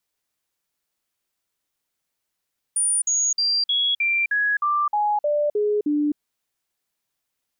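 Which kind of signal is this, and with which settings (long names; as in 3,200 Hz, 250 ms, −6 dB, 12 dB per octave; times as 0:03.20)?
stepped sweep 9,450 Hz down, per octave 2, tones 11, 0.26 s, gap 0.05 s −18 dBFS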